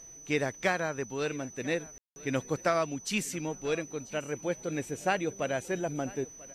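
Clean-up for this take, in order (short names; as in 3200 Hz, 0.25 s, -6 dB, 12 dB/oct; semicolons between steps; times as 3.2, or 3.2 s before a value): notch 6000 Hz, Q 30; room tone fill 1.98–2.16; inverse comb 0.991 s -21 dB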